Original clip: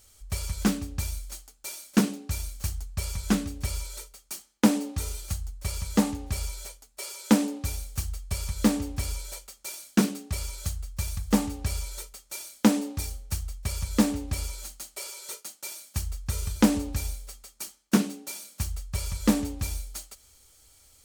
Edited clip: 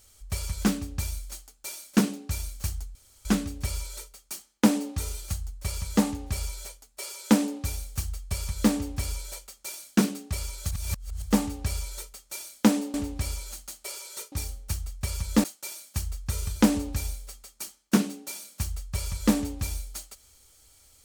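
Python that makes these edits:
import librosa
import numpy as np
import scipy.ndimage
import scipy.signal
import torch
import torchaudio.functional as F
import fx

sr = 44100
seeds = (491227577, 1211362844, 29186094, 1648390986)

y = fx.edit(x, sr, fx.room_tone_fill(start_s=2.95, length_s=0.3),
    fx.reverse_span(start_s=10.71, length_s=0.51),
    fx.move(start_s=12.94, length_s=1.12, to_s=15.44), tone=tone)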